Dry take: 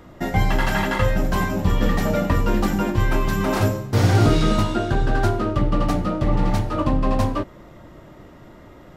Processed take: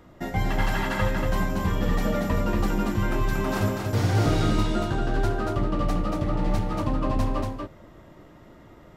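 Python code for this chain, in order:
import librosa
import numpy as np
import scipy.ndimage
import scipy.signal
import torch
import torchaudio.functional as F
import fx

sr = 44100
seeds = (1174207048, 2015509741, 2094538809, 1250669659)

y = x + 10.0 ** (-3.5 / 20.0) * np.pad(x, (int(234 * sr / 1000.0), 0))[:len(x)]
y = F.gain(torch.from_numpy(y), -6.5).numpy()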